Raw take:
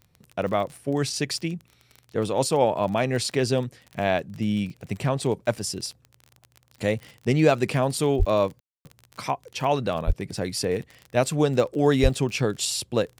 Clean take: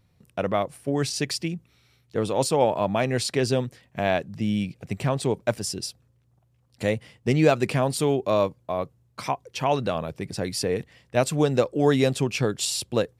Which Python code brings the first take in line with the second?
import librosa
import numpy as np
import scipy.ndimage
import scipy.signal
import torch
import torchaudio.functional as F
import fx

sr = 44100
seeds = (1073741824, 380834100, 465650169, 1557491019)

y = fx.fix_declick_ar(x, sr, threshold=6.5)
y = fx.highpass(y, sr, hz=140.0, slope=24, at=(8.18, 8.3), fade=0.02)
y = fx.highpass(y, sr, hz=140.0, slope=24, at=(10.06, 10.18), fade=0.02)
y = fx.highpass(y, sr, hz=140.0, slope=24, at=(12.02, 12.14), fade=0.02)
y = fx.fix_ambience(y, sr, seeds[0], print_start_s=6.21, print_end_s=6.71, start_s=8.6, end_s=8.85)